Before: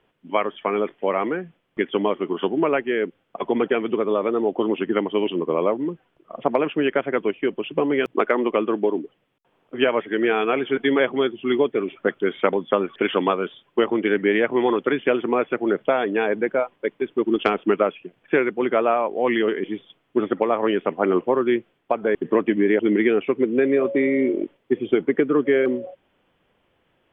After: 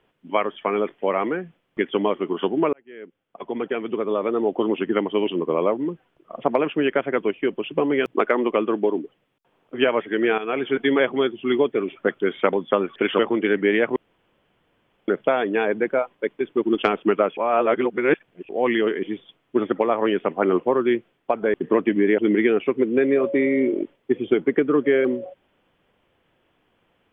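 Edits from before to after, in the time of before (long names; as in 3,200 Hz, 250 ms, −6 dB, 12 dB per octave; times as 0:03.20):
0:02.73–0:04.47: fade in
0:10.38–0:10.64: fade in, from −12 dB
0:13.19–0:13.80: remove
0:14.57–0:15.69: fill with room tone
0:17.98–0:19.10: reverse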